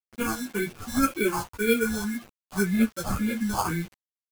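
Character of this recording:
aliases and images of a low sample rate 1,900 Hz, jitter 0%
phaser sweep stages 4, 1.9 Hz, lowest notch 380–1,000 Hz
a quantiser's noise floor 8 bits, dither none
a shimmering, thickened sound

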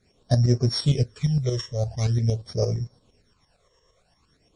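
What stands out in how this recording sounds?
a buzz of ramps at a fixed pitch in blocks of 8 samples
phaser sweep stages 12, 0.46 Hz, lowest notch 240–3,300 Hz
tremolo saw up 8.7 Hz, depth 60%
MP3

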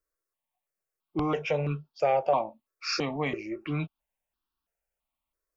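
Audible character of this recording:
notches that jump at a steady rate 3 Hz 830–2,100 Hz

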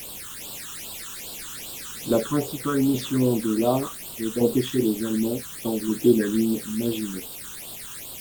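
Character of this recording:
tremolo saw down 0.68 Hz, depth 50%
a quantiser's noise floor 6 bits, dither triangular
phaser sweep stages 8, 2.5 Hz, lowest notch 620–2,000 Hz
Opus

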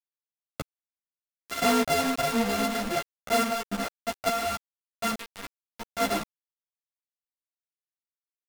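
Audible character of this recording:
a buzz of ramps at a fixed pitch in blocks of 64 samples
sample-and-hold tremolo, depth 80%
a quantiser's noise floor 6 bits, dither none
a shimmering, thickened sound

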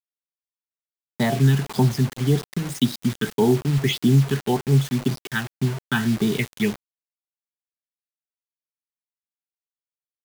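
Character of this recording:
phaser sweep stages 8, 1.8 Hz, lowest notch 620–2,600 Hz
a quantiser's noise floor 6 bits, dither none

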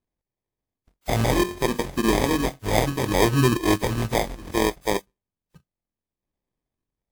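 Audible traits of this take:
a buzz of ramps at a fixed pitch in blocks of 16 samples
phaser sweep stages 6, 0.66 Hz, lowest notch 350–1,900 Hz
aliases and images of a low sample rate 1,400 Hz, jitter 0%
WMA

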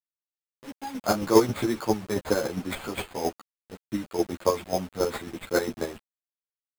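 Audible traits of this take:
aliases and images of a low sample rate 5,700 Hz, jitter 0%
chopped level 7.4 Hz, depth 60%, duty 25%
a quantiser's noise floor 8 bits, dither none
a shimmering, thickened sound

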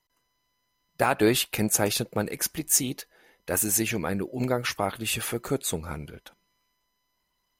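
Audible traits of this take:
background noise floor −76 dBFS
spectral slope −3.5 dB per octave

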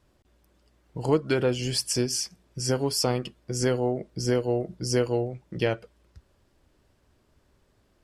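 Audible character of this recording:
background noise floor −67 dBFS
spectral slope −4.5 dB per octave

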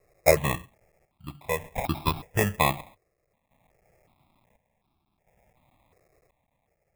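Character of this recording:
a quantiser's noise floor 12 bits, dither triangular
chopped level 0.57 Hz, depth 65%, duty 60%
aliases and images of a low sample rate 1,500 Hz, jitter 0%
notches that jump at a steady rate 2.7 Hz 920–1,900 Hz

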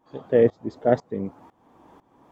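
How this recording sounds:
tremolo saw up 2 Hz, depth 90%

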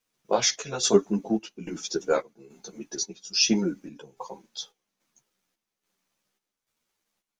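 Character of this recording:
a quantiser's noise floor 12 bits, dither none
chopped level 1.2 Hz, depth 60%, duty 65%
a shimmering, thickened sound

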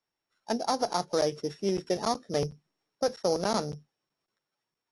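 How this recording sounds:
a buzz of ramps at a fixed pitch in blocks of 8 samples
AAC

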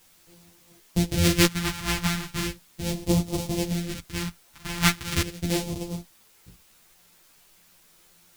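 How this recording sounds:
a buzz of ramps at a fixed pitch in blocks of 256 samples
phaser sweep stages 2, 0.38 Hz, lowest notch 450–1,500 Hz
a quantiser's noise floor 10 bits, dither triangular
a shimmering, thickened sound

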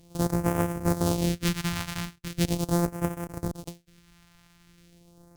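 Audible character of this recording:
a buzz of ramps at a fixed pitch in blocks of 256 samples
phaser sweep stages 2, 0.4 Hz, lowest notch 420–3,800 Hz
Ogg Vorbis

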